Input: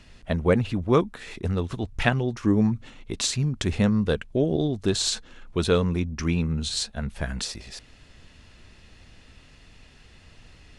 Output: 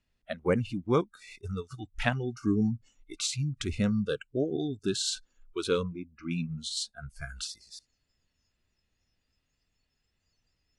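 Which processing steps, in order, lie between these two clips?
spectral noise reduction 22 dB; 5.83–6.31 tape spacing loss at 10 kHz 42 dB; gain -5.5 dB

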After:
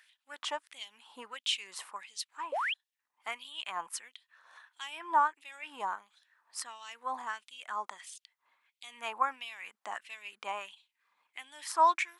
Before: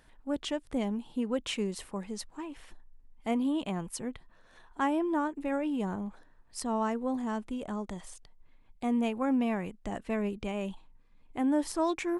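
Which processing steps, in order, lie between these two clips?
dynamic EQ 990 Hz, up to +4 dB, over -47 dBFS, Q 2.1; LFO high-pass sine 1.5 Hz 950–3400 Hz; painted sound rise, 2.52–2.74, 490–3500 Hz -32 dBFS

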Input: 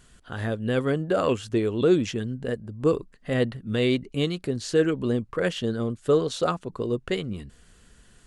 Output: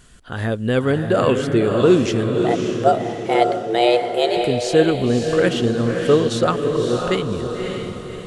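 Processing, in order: 2.42–4.37 frequency shift +230 Hz; diffused feedback echo 0.58 s, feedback 45%, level -4.5 dB; gain +6 dB

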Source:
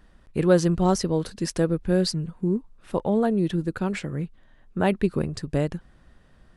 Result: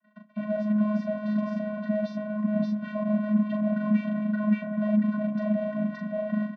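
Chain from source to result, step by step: G.711 law mismatch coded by mu; outdoor echo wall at 98 m, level -6 dB; gate -43 dBFS, range -41 dB; low shelf 380 Hz -7.5 dB; notches 60/120/180 Hz; doubler 40 ms -5 dB; overdrive pedal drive 41 dB, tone 1600 Hz, clips at -7 dBFS; reverse; compressor 6:1, threshold -22 dBFS, peak gain reduction 9.5 dB; reverse; vocoder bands 16, square 211 Hz; air absorption 230 m; on a send at -23 dB: reverb RT60 2.4 s, pre-delay 55 ms; on the sum: gain -2.5 dB

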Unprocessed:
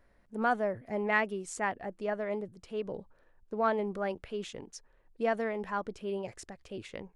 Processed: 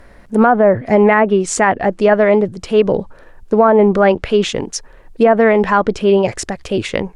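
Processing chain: treble ducked by the level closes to 1200 Hz, closed at -24 dBFS; maximiser +24.5 dB; gain -1 dB

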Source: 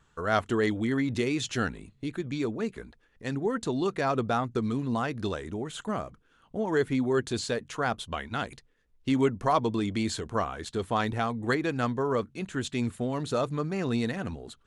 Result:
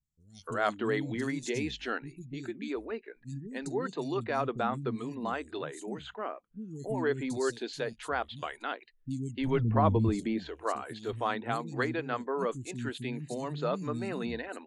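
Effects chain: 9.47–10.16 RIAA curve playback; three bands offset in time lows, highs, mids 30/300 ms, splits 240/4800 Hz; spectral noise reduction 17 dB; gain -3 dB

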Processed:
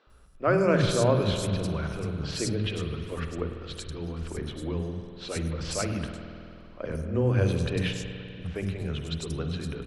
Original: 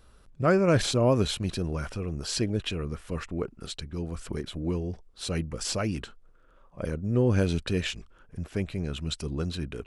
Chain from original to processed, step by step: three bands offset in time mids, lows, highs 70/100 ms, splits 260/4500 Hz; spring tank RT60 2.8 s, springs 49 ms, chirp 25 ms, DRR 5.5 dB

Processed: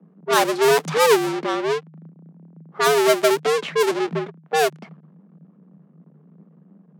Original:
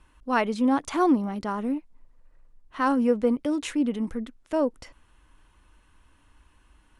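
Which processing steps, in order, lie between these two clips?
half-waves squared off; low-pass opened by the level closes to 590 Hz, open at -17 dBFS; frequency shift +150 Hz; gain +2 dB

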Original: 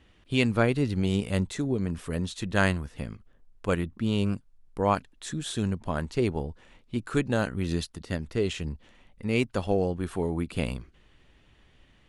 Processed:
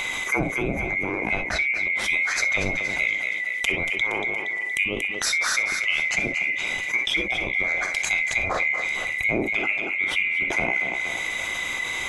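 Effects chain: band-swap scrambler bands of 2000 Hz; treble ducked by the level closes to 420 Hz, closed at -21 dBFS; bell 8900 Hz +11 dB 1.4 oct; in parallel at -2.5 dB: upward compressor, threshold -37 dBFS; on the sum: thinning echo 0.234 s, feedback 43%, high-pass 190 Hz, level -13 dB; on a send at -7 dB: reverb, pre-delay 3 ms; on the sum: fast leveller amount 70%

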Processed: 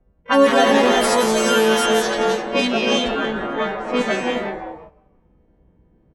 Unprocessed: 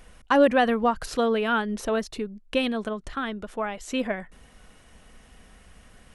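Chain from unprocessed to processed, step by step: frequency quantiser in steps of 2 st; HPF 59 Hz 6 dB/oct; low shelf 100 Hz +5.5 dB; on a send: frequency-shifting echo 0.174 s, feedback 50%, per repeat +130 Hz, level -6 dB; on the sum: non-linear reverb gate 0.4 s rising, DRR 1.5 dB; gate -41 dBFS, range -9 dB; harmoniser -5 st -18 dB, +12 st -9 dB; dynamic EQ 1100 Hz, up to -3 dB, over -33 dBFS, Q 1; low-pass opened by the level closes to 410 Hz, open at -16.5 dBFS; in parallel at -3 dB: vocal rider within 3 dB

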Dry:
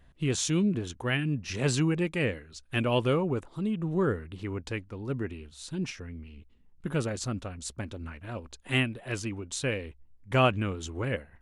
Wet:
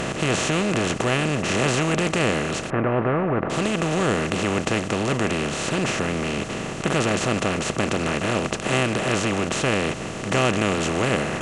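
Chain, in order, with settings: per-bin compression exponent 0.2; 2.7–3.5 LPF 1800 Hz 24 dB/oct; gain -2 dB

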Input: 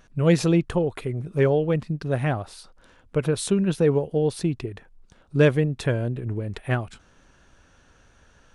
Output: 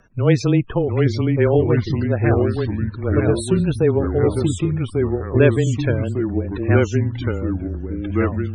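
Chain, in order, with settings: echoes that change speed 0.679 s, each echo -2 st, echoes 3; loudest bins only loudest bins 64; frequency shift -20 Hz; gain +3 dB

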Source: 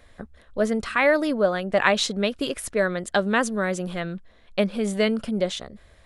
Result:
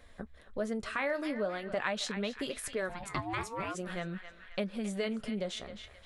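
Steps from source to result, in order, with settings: flange 0.44 Hz, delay 3.8 ms, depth 7.7 ms, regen -61%; narrowing echo 0.265 s, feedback 56%, band-pass 2200 Hz, level -12 dB; 2.88–3.74 ring modulator 320 Hz -> 900 Hz; compressor 2:1, threshold -37 dBFS, peak gain reduction 10.5 dB

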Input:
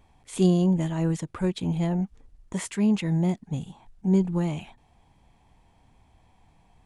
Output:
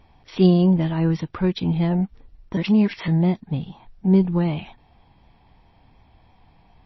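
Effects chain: 0.94–1.91 dynamic EQ 600 Hz, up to -7 dB, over -50 dBFS, Q 5.1; 2.57–3.08 reverse; gain +5.5 dB; MP3 24 kbps 16000 Hz

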